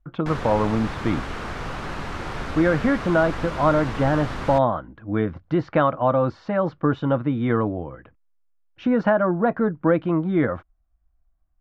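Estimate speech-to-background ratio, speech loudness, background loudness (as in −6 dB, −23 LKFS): 9.5 dB, −22.5 LKFS, −32.0 LKFS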